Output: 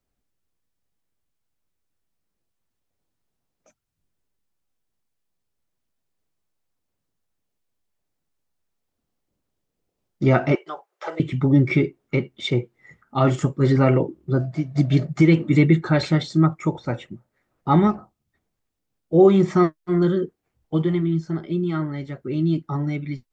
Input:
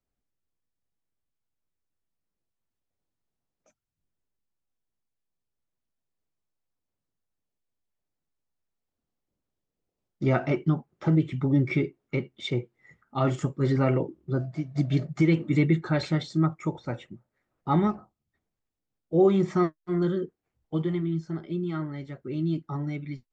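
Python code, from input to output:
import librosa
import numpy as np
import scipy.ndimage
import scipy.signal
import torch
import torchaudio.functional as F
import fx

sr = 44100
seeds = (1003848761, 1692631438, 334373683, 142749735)

y = fx.cheby2_highpass(x, sr, hz=250.0, order=4, stop_db=40, at=(10.55, 11.2))
y = y * 10.0 ** (6.5 / 20.0)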